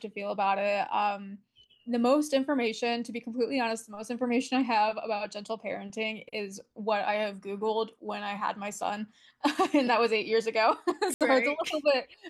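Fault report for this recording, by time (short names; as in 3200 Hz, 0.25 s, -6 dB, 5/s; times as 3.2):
11.14–11.21 gap 67 ms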